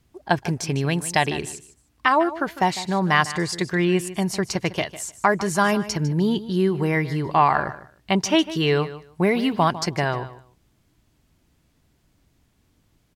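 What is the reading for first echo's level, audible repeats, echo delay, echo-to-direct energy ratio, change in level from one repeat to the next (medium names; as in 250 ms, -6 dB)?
-15.0 dB, 2, 152 ms, -15.0 dB, -15.0 dB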